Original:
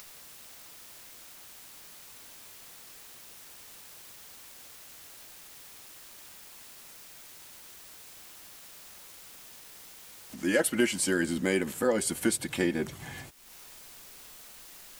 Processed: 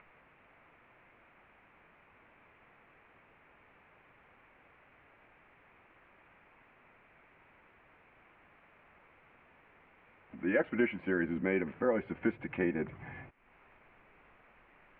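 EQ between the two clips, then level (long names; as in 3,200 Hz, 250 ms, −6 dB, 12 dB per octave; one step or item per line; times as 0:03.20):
elliptic low-pass filter 2,400 Hz, stop band 60 dB
high-frequency loss of the air 69 metres
−3.0 dB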